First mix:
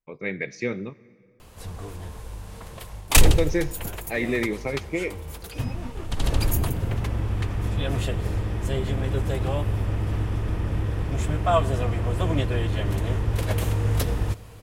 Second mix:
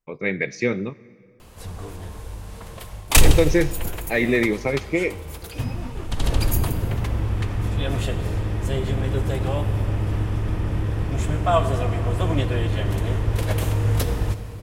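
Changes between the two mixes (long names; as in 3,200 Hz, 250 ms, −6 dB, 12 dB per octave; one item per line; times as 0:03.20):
speech +5.5 dB
background: send +11.0 dB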